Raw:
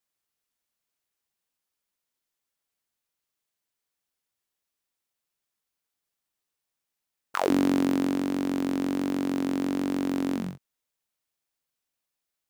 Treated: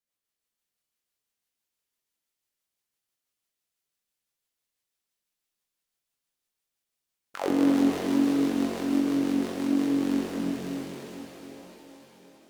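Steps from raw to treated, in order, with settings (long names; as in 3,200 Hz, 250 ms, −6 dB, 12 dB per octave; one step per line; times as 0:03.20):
delay with a high-pass on its return 334 ms, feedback 62%, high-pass 2,200 Hz, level −3.5 dB
rotating-speaker cabinet horn 6 Hz, later 0.8 Hz, at 0:09.52
reverb with rising layers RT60 4 s, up +7 semitones, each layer −8 dB, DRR −1.5 dB
level −3 dB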